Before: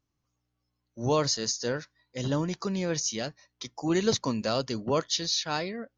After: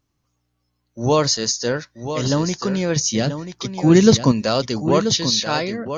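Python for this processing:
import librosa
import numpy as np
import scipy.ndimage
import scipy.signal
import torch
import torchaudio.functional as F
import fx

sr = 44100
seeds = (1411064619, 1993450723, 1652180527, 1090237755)

y = fx.peak_eq(x, sr, hz=140.0, db=10.0, octaves=2.4, at=(2.96, 4.32))
y = y + 10.0 ** (-9.5 / 20.0) * np.pad(y, (int(984 * sr / 1000.0), 0))[:len(y)]
y = F.gain(torch.from_numpy(y), 8.5).numpy()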